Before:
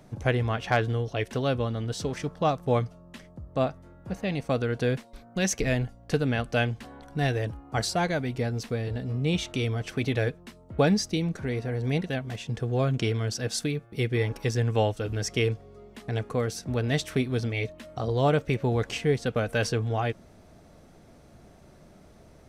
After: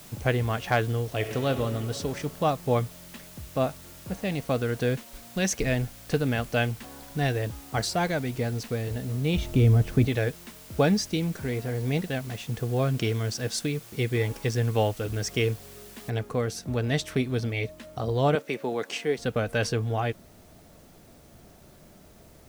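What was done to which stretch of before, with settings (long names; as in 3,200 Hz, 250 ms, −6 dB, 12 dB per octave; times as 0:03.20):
0:01.04–0:01.49: thrown reverb, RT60 2.8 s, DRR 5.5 dB
0:09.37–0:10.07: spectral tilt −3.5 dB per octave
0:16.10: noise floor change −49 dB −61 dB
0:18.35–0:19.18: Bessel high-pass filter 290 Hz, order 4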